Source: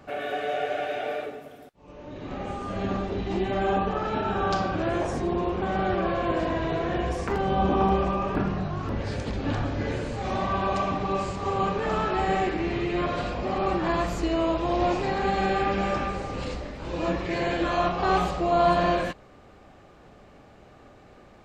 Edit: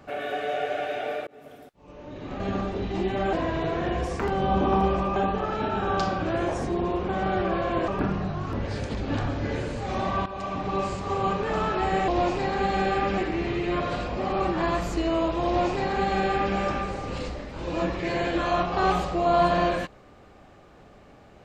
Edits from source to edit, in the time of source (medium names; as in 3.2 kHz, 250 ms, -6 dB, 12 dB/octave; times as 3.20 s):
1.27–1.52 s: fade in
2.40–2.76 s: delete
6.41–8.24 s: move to 3.69 s
10.62–11.10 s: fade in, from -14 dB
14.72–15.82 s: copy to 12.44 s